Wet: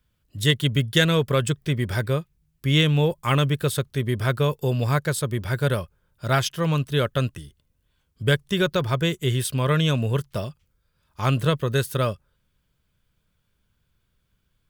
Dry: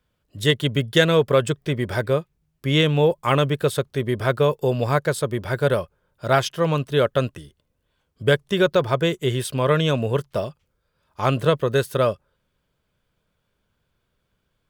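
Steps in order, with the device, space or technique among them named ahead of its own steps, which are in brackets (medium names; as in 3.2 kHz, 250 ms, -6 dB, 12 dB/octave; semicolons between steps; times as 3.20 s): smiley-face EQ (bass shelf 130 Hz +5.5 dB; peaking EQ 580 Hz -7 dB 1.9 oct; treble shelf 8.6 kHz +5.5 dB)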